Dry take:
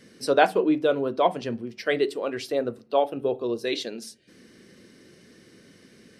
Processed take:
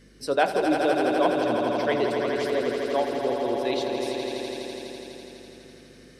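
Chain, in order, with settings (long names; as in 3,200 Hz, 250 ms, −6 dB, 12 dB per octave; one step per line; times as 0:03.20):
mains hum 50 Hz, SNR 27 dB
echo that builds up and dies away 83 ms, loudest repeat 5, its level −7.5 dB
level −3.5 dB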